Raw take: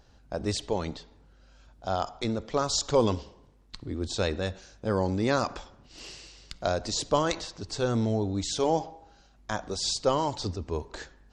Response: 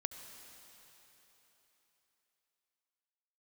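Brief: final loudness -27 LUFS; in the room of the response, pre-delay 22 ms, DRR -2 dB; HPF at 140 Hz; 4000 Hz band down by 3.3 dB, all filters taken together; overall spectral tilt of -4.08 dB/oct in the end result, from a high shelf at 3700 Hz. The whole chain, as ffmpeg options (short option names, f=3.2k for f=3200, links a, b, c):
-filter_complex "[0:a]highpass=140,highshelf=f=3.7k:g=4.5,equalizer=f=4k:t=o:g=-7.5,asplit=2[a][b];[1:a]atrim=start_sample=2205,adelay=22[c];[b][c]afir=irnorm=-1:irlink=0,volume=3dB[d];[a][d]amix=inputs=2:normalize=0,volume=-0.5dB"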